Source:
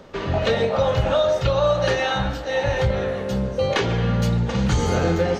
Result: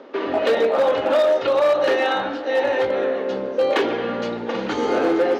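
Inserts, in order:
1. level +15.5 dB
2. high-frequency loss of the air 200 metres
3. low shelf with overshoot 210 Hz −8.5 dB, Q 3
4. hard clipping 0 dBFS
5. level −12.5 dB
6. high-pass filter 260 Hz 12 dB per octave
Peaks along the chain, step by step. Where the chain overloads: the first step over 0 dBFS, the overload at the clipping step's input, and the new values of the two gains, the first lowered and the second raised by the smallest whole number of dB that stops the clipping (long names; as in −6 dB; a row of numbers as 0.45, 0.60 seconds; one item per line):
+7.5, +7.0, +7.0, 0.0, −12.5, −8.0 dBFS
step 1, 7.0 dB
step 1 +8.5 dB, step 5 −5.5 dB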